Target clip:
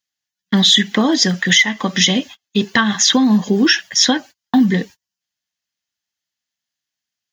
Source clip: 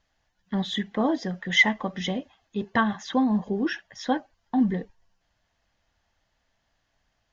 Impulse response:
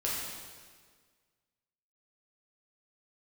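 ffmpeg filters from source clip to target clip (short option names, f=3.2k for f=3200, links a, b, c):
-af "crystalizer=i=4.5:c=0,acompressor=threshold=-22dB:ratio=16,agate=range=-32dB:threshold=-45dB:ratio=16:detection=peak,highpass=180,equalizer=f=670:t=o:w=1.9:g=-10.5,alimiter=level_in=19dB:limit=-1dB:release=50:level=0:latency=1,volume=-1dB"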